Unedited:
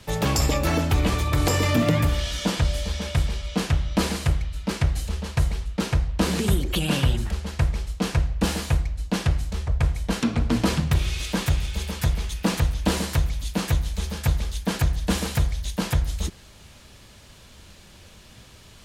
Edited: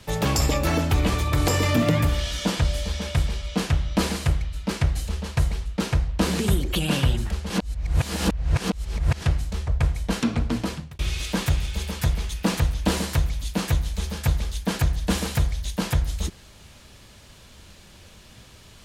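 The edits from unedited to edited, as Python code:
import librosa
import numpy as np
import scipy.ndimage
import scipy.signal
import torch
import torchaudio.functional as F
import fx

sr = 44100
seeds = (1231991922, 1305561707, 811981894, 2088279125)

y = fx.edit(x, sr, fx.reverse_span(start_s=7.5, length_s=1.72),
    fx.fade_out_span(start_s=10.32, length_s=0.67), tone=tone)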